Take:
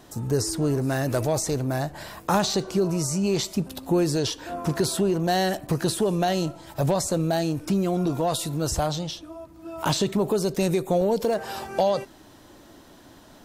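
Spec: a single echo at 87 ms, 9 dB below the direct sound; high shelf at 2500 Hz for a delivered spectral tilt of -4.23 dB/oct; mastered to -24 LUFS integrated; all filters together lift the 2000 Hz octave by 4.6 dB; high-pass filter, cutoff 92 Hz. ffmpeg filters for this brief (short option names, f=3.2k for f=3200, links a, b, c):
-af "highpass=92,equalizer=f=2k:t=o:g=4.5,highshelf=f=2.5k:g=3.5,aecho=1:1:87:0.355"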